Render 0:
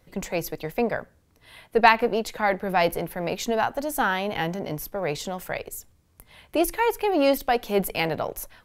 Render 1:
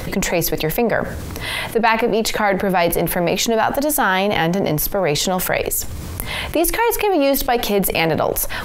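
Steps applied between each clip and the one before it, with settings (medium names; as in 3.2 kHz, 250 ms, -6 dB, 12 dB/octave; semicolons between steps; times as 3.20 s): level flattener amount 70%; trim -1 dB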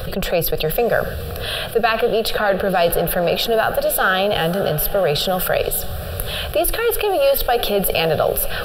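static phaser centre 1.4 kHz, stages 8; echo that smears into a reverb 563 ms, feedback 55%, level -15 dB; trim +2.5 dB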